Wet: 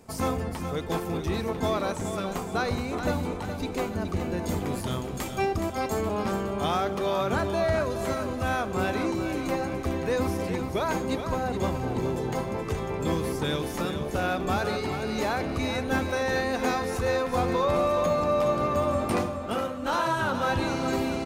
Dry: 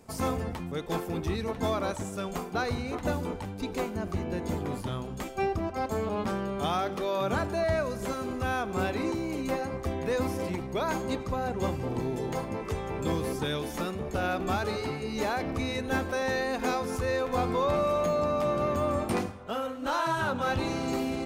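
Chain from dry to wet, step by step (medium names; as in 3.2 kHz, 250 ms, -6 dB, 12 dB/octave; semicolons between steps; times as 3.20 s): 4.39–6.01 s: treble shelf 3.8 kHz +7.5 dB; feedback delay 420 ms, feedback 48%, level -8.5 dB; trim +2 dB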